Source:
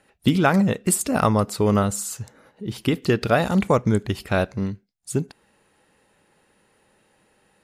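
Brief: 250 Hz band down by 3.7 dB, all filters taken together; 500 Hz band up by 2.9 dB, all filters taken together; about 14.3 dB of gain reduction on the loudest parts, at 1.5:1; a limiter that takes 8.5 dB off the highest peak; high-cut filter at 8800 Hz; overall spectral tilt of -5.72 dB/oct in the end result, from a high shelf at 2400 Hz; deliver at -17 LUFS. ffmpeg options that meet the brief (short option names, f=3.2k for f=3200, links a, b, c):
-af "lowpass=8.8k,equalizer=f=250:t=o:g=-6.5,equalizer=f=500:t=o:g=5.5,highshelf=f=2.4k:g=-5,acompressor=threshold=-53dB:ratio=1.5,volume=21.5dB,alimiter=limit=-4.5dB:level=0:latency=1"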